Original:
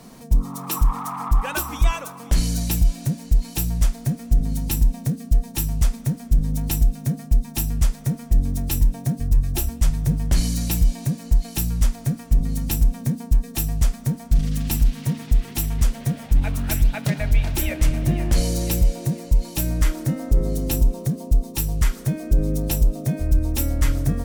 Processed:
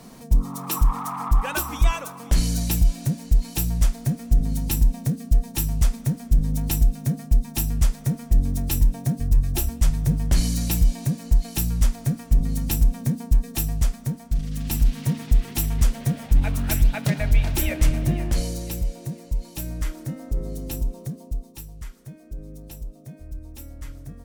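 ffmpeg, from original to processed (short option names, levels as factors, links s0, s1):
-af "volume=2.11,afade=t=out:st=13.5:d=0.96:silence=0.473151,afade=t=in:st=14.46:d=0.49:silence=0.446684,afade=t=out:st=17.87:d=0.76:silence=0.398107,afade=t=out:st=21.04:d=0.68:silence=0.334965"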